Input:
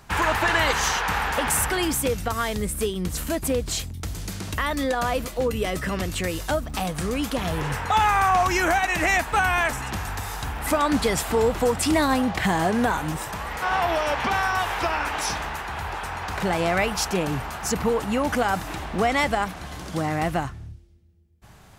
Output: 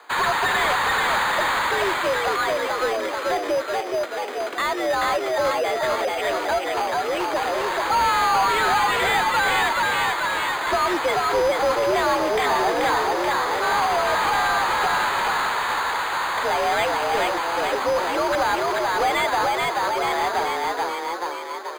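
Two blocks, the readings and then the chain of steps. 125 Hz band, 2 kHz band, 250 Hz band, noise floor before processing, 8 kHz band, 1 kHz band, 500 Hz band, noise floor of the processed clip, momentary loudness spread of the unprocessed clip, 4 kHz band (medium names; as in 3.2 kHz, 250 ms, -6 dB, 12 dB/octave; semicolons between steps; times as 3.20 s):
-12.0 dB, +3.5 dB, -6.0 dB, -47 dBFS, -4.0 dB, +4.5 dB, +3.5 dB, -29 dBFS, 10 LU, +3.5 dB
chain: on a send: frequency-shifting echo 433 ms, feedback 57%, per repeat +55 Hz, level -3.5 dB; on the sum: mistuned SSB +63 Hz 290–3600 Hz; careless resampling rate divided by 8×, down filtered, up hold; overdrive pedal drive 18 dB, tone 2.5 kHz, clips at -9.5 dBFS; trim -3 dB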